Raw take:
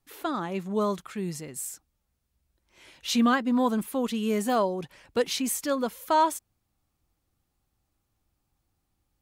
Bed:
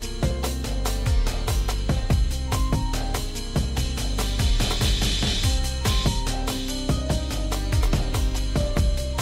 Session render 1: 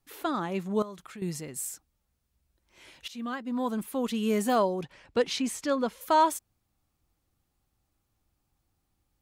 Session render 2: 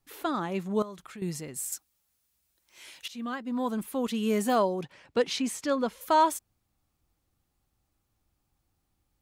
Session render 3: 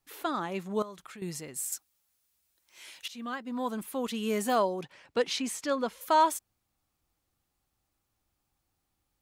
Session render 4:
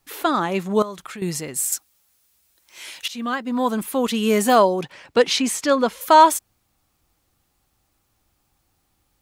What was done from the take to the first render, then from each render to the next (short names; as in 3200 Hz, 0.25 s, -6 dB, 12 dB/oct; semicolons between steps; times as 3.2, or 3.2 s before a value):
0.82–1.22 compressor 3:1, threshold -43 dBFS; 3.08–4.27 fade in, from -22.5 dB; 4.83–6.01 air absorption 59 m
1.72–3.06 tilt +3 dB/oct; 4.07–5.64 HPF 88 Hz
low shelf 340 Hz -6.5 dB
gain +11.5 dB